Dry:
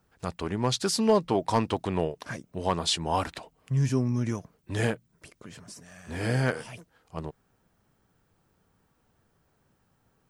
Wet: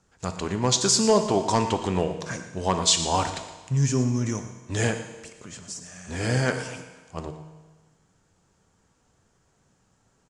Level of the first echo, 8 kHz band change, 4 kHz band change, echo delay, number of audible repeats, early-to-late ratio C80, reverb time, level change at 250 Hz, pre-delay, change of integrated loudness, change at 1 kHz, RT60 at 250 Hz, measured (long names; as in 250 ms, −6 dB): −14.5 dB, +11.5 dB, +6.0 dB, 116 ms, 1, 9.5 dB, 1.3 s, +2.5 dB, 6 ms, +4.5 dB, +3.5 dB, 1.3 s